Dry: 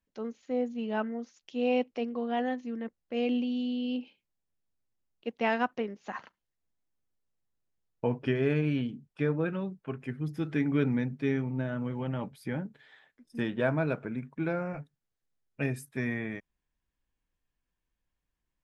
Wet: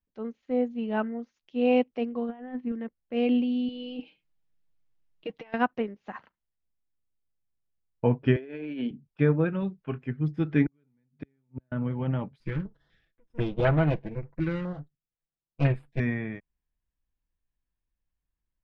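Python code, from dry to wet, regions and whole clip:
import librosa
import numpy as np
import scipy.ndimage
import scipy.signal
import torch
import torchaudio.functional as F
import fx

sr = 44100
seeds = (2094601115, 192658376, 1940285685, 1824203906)

y = fx.chain(x, sr, fx.peak_eq(hz=580.0, db=-12.0, octaves=0.2),
    fx.over_compress(threshold_db=-35.0, ratio=-0.5),
    fx.lowpass(hz=2200.0, slope=12), at=(2.29, 2.72))
y = fx.chain(y, sr, fx.high_shelf(hz=2000.0, db=5.5),
    fx.over_compress(threshold_db=-34.0, ratio=-0.5),
    fx.comb(ms=6.4, depth=0.68), at=(3.68, 5.54))
y = fx.chain(y, sr, fx.highpass(hz=250.0, slope=24),
    fx.peak_eq(hz=1200.0, db=-13.5, octaves=0.25),
    fx.over_compress(threshold_db=-36.0, ratio=-1.0), at=(8.36, 8.91))
y = fx.chain(y, sr, fx.high_shelf(hz=3000.0, db=10.5),
    fx.doubler(ms=25.0, db=-11.5), at=(9.6, 10.04))
y = fx.chain(y, sr, fx.gate_flip(shuts_db=-25.0, range_db=-38),
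    fx.highpass(hz=61.0, slope=12), at=(10.66, 11.72))
y = fx.chain(y, sr, fx.lower_of_two(delay_ms=6.0),
    fx.filter_held_notch(hz=4.0, low_hz=710.0, high_hz=5900.0), at=(12.4, 16.0))
y = scipy.signal.sosfilt(scipy.signal.butter(2, 3400.0, 'lowpass', fs=sr, output='sos'), y)
y = fx.low_shelf(y, sr, hz=140.0, db=9.0)
y = fx.upward_expand(y, sr, threshold_db=-46.0, expansion=1.5)
y = y * librosa.db_to_amplitude(5.0)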